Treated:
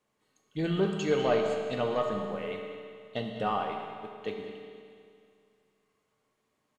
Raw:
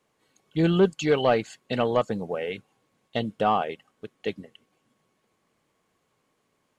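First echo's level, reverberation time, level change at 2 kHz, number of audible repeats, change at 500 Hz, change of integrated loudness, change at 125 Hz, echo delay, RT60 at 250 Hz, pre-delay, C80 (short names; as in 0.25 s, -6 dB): -13.5 dB, 2.3 s, -5.0 dB, 1, -4.5 dB, -5.5 dB, -6.5 dB, 0.199 s, 2.3 s, 5 ms, 3.5 dB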